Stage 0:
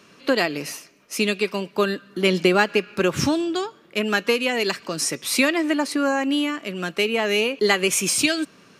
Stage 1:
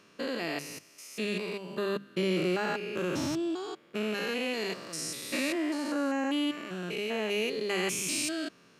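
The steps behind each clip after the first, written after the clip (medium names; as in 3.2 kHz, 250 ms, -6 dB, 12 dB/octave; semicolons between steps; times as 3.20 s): spectrogram pixelated in time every 200 ms; hum notches 50/100/150/200 Hz; trim -6.5 dB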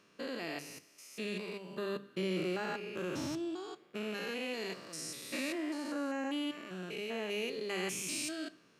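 reverberation RT60 0.55 s, pre-delay 11 ms, DRR 15 dB; trim -6.5 dB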